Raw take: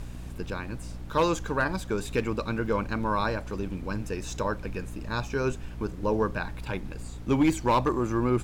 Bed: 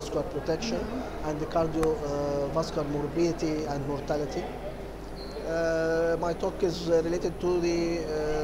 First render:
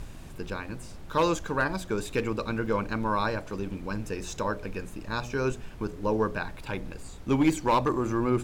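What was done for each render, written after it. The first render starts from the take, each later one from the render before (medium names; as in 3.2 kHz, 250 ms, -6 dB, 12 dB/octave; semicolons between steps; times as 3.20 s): de-hum 60 Hz, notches 11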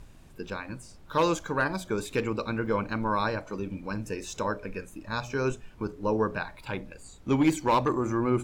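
noise print and reduce 9 dB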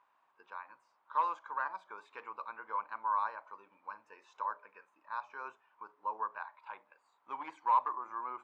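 ladder band-pass 1.1 kHz, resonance 65%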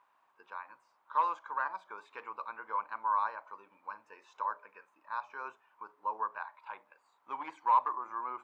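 trim +2 dB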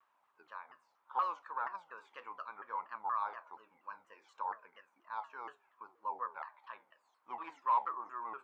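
flange 0.69 Hz, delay 8.5 ms, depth 4.8 ms, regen +75%; vibrato with a chosen wave saw down 4.2 Hz, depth 250 cents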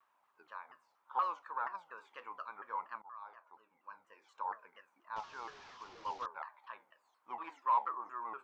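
3.02–4.58 s: fade in, from -19.5 dB; 5.16–6.26 s: one-bit delta coder 32 kbps, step -49 dBFS; 7.49–8.03 s: high-pass 260 Hz -> 140 Hz 24 dB/octave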